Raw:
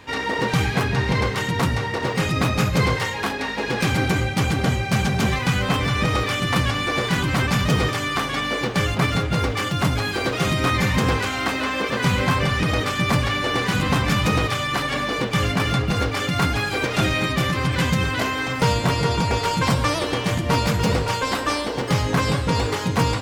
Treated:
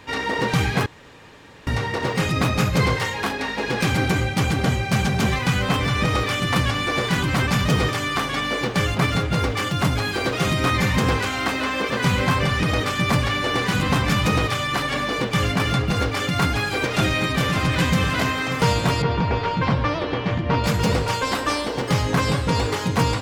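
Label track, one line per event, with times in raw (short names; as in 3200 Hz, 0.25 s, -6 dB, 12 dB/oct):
0.860000	1.670000	room tone
16.770000	17.750000	echo throw 0.57 s, feedback 60%, level -6.5 dB
19.020000	20.640000	air absorption 250 m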